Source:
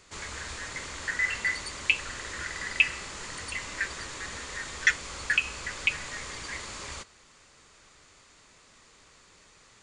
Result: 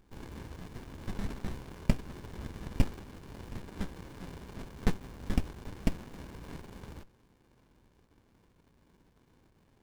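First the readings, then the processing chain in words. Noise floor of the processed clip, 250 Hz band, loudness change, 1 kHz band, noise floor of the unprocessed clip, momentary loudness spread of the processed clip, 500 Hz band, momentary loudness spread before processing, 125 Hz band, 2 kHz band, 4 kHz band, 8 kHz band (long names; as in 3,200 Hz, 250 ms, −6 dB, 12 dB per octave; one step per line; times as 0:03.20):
−67 dBFS, +11.0 dB, −9.5 dB, −7.5 dB, −58 dBFS, 13 LU, +0.5 dB, 12 LU, +9.5 dB, −22.5 dB, −16.5 dB, −18.0 dB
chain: running median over 5 samples
windowed peak hold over 65 samples
level −1.5 dB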